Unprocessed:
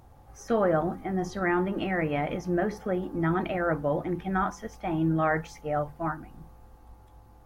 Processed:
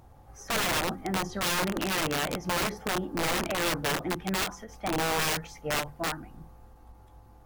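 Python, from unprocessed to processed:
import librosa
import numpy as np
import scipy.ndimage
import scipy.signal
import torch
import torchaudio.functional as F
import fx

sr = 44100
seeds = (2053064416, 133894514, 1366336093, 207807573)

y = (np.mod(10.0 ** (22.5 / 20.0) * x + 1.0, 2.0) - 1.0) / 10.0 ** (22.5 / 20.0)
y = fx.end_taper(y, sr, db_per_s=180.0)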